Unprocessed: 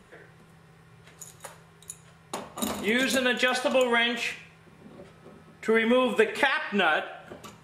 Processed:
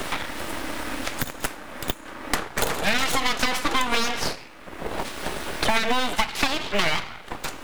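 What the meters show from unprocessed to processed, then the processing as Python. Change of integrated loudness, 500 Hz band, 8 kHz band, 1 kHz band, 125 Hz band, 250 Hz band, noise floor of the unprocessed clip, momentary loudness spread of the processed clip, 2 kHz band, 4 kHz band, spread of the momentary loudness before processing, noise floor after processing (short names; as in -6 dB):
-1.0 dB, -4.0 dB, +7.5 dB, +5.0 dB, +7.0 dB, -1.0 dB, -55 dBFS, 11 LU, +1.0 dB, +5.0 dB, 21 LU, -41 dBFS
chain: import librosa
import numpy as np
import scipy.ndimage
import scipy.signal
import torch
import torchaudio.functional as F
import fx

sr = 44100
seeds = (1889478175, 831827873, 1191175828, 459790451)

y = fx.law_mismatch(x, sr, coded='A')
y = np.abs(y)
y = fx.low_shelf(y, sr, hz=220.0, db=-4.5)
y = fx.band_squash(y, sr, depth_pct=100)
y = y * librosa.db_to_amplitude(6.0)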